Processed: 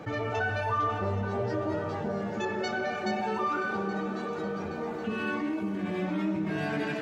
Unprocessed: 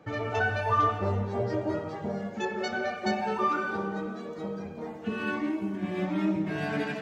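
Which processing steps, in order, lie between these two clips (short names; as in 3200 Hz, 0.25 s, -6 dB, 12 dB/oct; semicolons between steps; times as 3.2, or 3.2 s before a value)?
multi-head echo 0.274 s, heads all three, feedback 63%, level -20 dB; fast leveller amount 50%; gain -5 dB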